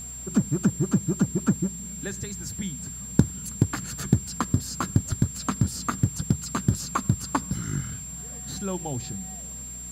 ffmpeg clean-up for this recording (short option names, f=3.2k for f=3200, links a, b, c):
-af "adeclick=t=4,bandreject=f=61.6:t=h:w=4,bandreject=f=123.2:t=h:w=4,bandreject=f=184.8:t=h:w=4,bandreject=f=246.4:t=h:w=4,bandreject=f=7.4k:w=30,afwtdn=0.0025"